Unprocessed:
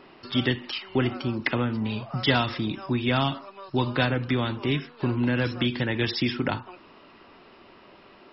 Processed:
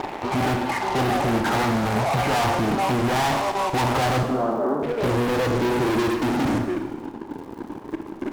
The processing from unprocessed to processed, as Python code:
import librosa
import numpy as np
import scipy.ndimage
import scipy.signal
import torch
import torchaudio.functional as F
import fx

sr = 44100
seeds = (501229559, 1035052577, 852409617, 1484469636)

p1 = fx.freq_compress(x, sr, knee_hz=1000.0, ratio=1.5)
p2 = fx.level_steps(p1, sr, step_db=17)
p3 = p1 + F.gain(torch.from_numpy(p2), 1.5).numpy()
p4 = 10.0 ** (-20.0 / 20.0) * np.tanh(p3 / 10.0 ** (-20.0 / 20.0))
p5 = fx.filter_sweep_lowpass(p4, sr, from_hz=830.0, to_hz=300.0, start_s=3.93, end_s=6.41, q=5.2)
p6 = fx.fuzz(p5, sr, gain_db=38.0, gate_db=-46.0)
p7 = fx.ellip_bandpass(p6, sr, low_hz=210.0, high_hz=1300.0, order=3, stop_db=40, at=(4.23, 4.83))
p8 = fx.dmg_crackle(p7, sr, seeds[0], per_s=110.0, level_db=-33.0)
p9 = fx.rev_schroeder(p8, sr, rt60_s=1.2, comb_ms=27, drr_db=6.5)
y = F.gain(torch.from_numpy(p9), -7.5).numpy()